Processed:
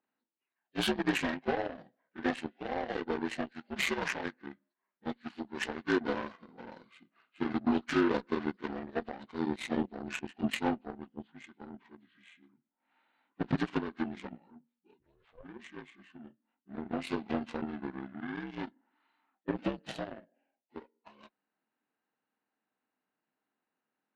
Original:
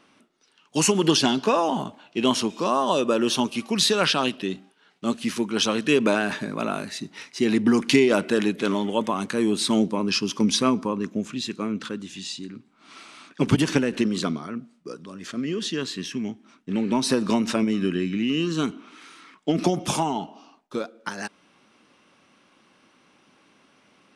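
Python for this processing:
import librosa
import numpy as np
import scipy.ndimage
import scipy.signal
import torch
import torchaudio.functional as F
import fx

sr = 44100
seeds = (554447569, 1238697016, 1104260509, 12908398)

y = fx.partial_stretch(x, sr, pct=77)
y = fx.ring_mod(y, sr, carrier_hz=fx.line((14.99, 110.0), (15.43, 290.0)), at=(14.99, 15.43), fade=0.02)
y = fx.cheby_harmonics(y, sr, harmonics=(7,), levels_db=(-18,), full_scale_db=-8.0)
y = F.gain(torch.from_numpy(y), -8.5).numpy()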